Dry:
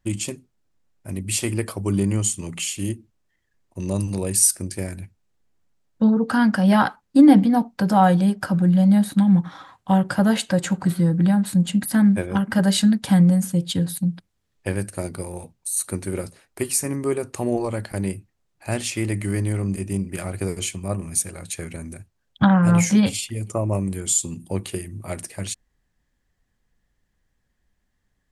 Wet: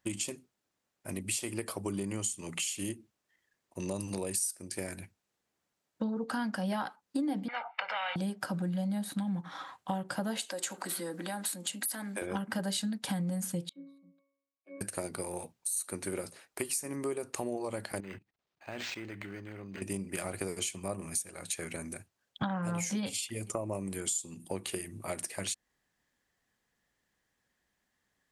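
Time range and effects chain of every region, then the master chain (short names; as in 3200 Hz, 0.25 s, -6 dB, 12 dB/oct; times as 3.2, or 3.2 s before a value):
7.48–8.16 elliptic band-pass 840–2500 Hz, stop band 70 dB + comb 1.4 ms, depth 88% + spectral compressor 4:1
10.42–12.22 HPF 270 Hz 24 dB/oct + compressor 2.5:1, threshold -32 dBFS + high shelf 4200 Hz +9 dB
13.69–14.81 steep high-pass 190 Hz 72 dB/oct + bell 3900 Hz +14 dB 0.24 oct + octave resonator C#, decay 0.78 s
18–19.82 level quantiser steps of 18 dB + decimation joined by straight lines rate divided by 4×
whole clip: HPF 430 Hz 6 dB/oct; dynamic EQ 1600 Hz, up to -4 dB, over -37 dBFS, Q 0.89; compressor 5:1, threshold -32 dBFS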